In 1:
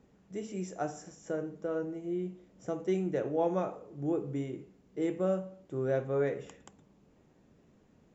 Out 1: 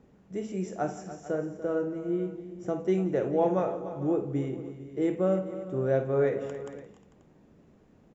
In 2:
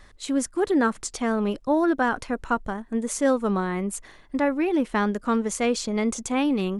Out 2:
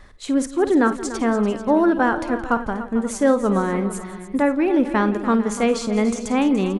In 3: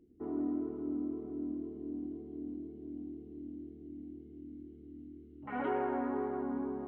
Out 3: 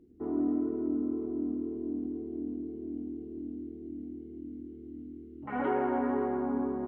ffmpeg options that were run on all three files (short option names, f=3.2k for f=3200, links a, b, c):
-filter_complex "[0:a]highshelf=f=2.6k:g=-6.5,asplit=2[a][b];[b]aecho=0:1:52|170|291|446|535:0.237|0.119|0.211|0.15|0.112[c];[a][c]amix=inputs=2:normalize=0,volume=4.5dB"